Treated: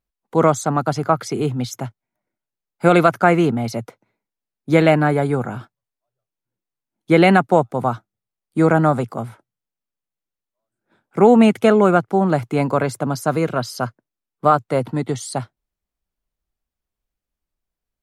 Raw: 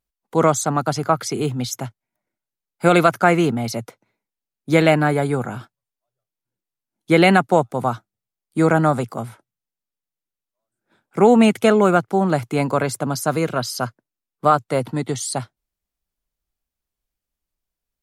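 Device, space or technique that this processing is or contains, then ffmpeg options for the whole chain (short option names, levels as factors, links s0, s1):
behind a face mask: -af "highshelf=f=2900:g=-7.5,volume=1.19"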